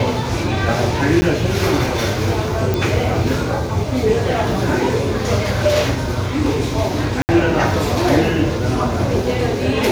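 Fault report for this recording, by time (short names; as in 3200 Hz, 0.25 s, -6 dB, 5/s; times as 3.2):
1.21–1.22 gap 10 ms
2.74 pop
7.22–7.29 gap 69 ms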